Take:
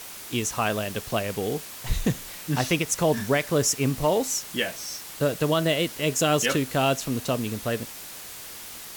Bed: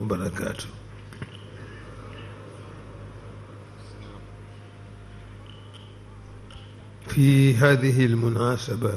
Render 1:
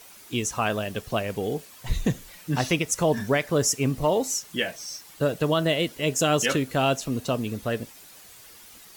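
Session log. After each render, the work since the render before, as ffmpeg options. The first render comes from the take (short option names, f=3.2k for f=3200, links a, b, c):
-af "afftdn=nr=10:nf=-40"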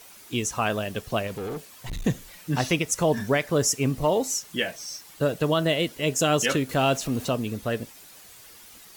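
-filter_complex "[0:a]asettb=1/sr,asplit=3[a][b][c];[a]atrim=end=1.274[d];[b]atrim=start=1.27:end=2.05,asetpts=PTS-STARTPTS,afade=t=in:d=0.004:c=qsin,afade=t=out:st=0.776:d=0.004:c=qsin,asoftclip=type=hard:threshold=-29.5dB[e];[c]atrim=start=2.046[f];[d][e]acrossfade=d=0.004:c1=hsin:c2=qsin[g];[g][f]acrossfade=d=0.004:c1=qsin:c2=hsin,asettb=1/sr,asplit=3[h][i][j];[h]atrim=end=6.694[k];[i]atrim=start=6.69:end=7.29,asetpts=PTS-STARTPTS,afade=t=in:d=0.004:c=qsin,afade=t=out:st=0.596:d=0.004:c=qsin,aeval=exprs='val(0)+0.5*0.0133*sgn(val(0))':c=same[l];[j]atrim=start=7.286[m];[k][l]acrossfade=d=0.004:c1=hsin:c2=qsin[n];[n][m]acrossfade=d=0.004:c1=qsin:c2=hsin"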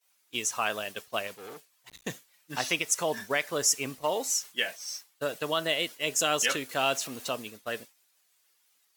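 -af "highpass=f=1.1k:p=1,agate=range=-33dB:threshold=-35dB:ratio=3:detection=peak"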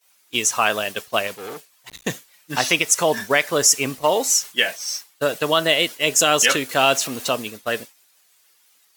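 -af "volume=10.5dB,alimiter=limit=-3dB:level=0:latency=1"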